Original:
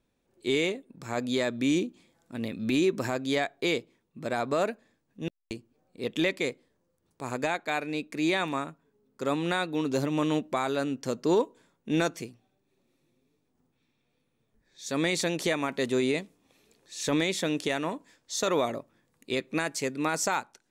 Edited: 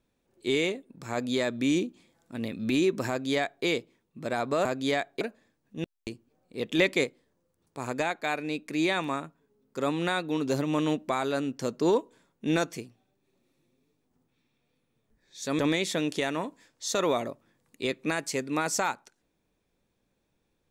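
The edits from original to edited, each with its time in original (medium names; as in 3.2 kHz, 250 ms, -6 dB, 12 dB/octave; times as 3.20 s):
3.09–3.65 s: copy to 4.65 s
6.23–6.48 s: gain +4 dB
15.03–17.07 s: delete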